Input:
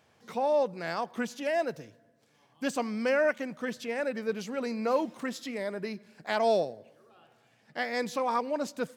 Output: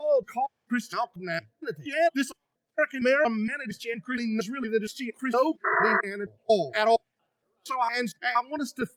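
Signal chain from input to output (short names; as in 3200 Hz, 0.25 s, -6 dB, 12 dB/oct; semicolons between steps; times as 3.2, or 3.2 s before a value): slices in reverse order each 0.232 s, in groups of 3; painted sound noise, 5.64–6.01, 360–2000 Hz -28 dBFS; spectral noise reduction 20 dB; gain +6 dB; Opus 48 kbps 48000 Hz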